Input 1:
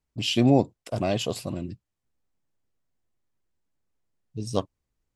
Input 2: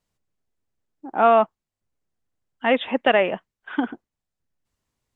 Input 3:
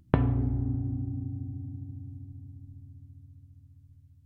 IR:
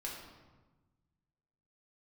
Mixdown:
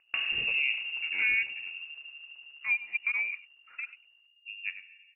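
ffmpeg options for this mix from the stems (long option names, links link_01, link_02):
-filter_complex "[0:a]adelay=100,volume=-12dB,asplit=3[link_01][link_02][link_03];[link_02]volume=-9dB[link_04];[link_03]volume=-10dB[link_05];[1:a]bandpass=frequency=480:width_type=q:width=4.9:csg=0,volume=1.5dB,asplit=2[link_06][link_07];[link_07]volume=-22.5dB[link_08];[2:a]acrusher=bits=7:mode=log:mix=0:aa=0.000001,asoftclip=type=hard:threshold=-11.5dB,volume=-1dB,asplit=2[link_09][link_10];[link_10]volume=-4.5dB[link_11];[link_06][link_09]amix=inputs=2:normalize=0,highpass=frequency=490:poles=1,alimiter=limit=-20dB:level=0:latency=1:release=484,volume=0dB[link_12];[3:a]atrim=start_sample=2205[link_13];[link_04][link_11]amix=inputs=2:normalize=0[link_14];[link_14][link_13]afir=irnorm=-1:irlink=0[link_15];[link_05][link_08]amix=inputs=2:normalize=0,aecho=0:1:98:1[link_16];[link_01][link_12][link_15][link_16]amix=inputs=4:normalize=0,lowpass=frequency=2500:width_type=q:width=0.5098,lowpass=frequency=2500:width_type=q:width=0.6013,lowpass=frequency=2500:width_type=q:width=0.9,lowpass=frequency=2500:width_type=q:width=2.563,afreqshift=-2900"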